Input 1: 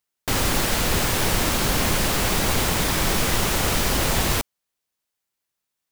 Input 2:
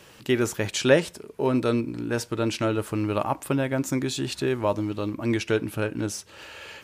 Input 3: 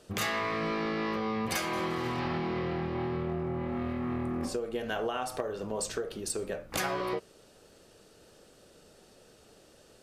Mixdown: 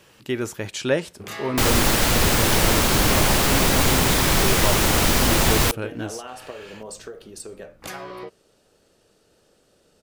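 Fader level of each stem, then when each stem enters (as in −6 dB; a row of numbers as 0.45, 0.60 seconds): +3.0, −3.0, −3.5 decibels; 1.30, 0.00, 1.10 seconds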